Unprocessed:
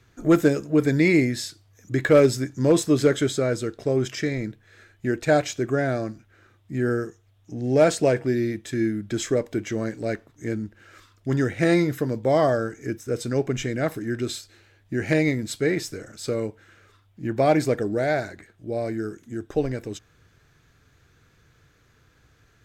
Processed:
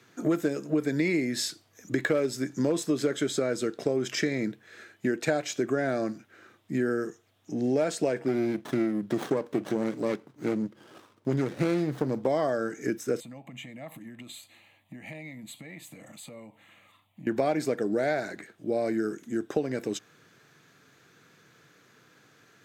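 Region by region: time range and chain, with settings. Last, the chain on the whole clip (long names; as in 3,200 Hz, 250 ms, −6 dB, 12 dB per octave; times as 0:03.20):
0:08.28–0:12.27: parametric band 130 Hz +6.5 dB 0.49 octaves + notch comb filter 690 Hz + windowed peak hold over 17 samples
0:13.20–0:17.27: downward compressor 5 to 1, threshold −38 dBFS + phaser with its sweep stopped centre 1,500 Hz, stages 6
whole clip: high-pass filter 160 Hz 24 dB per octave; downward compressor 6 to 1, threshold −27 dBFS; level +3.5 dB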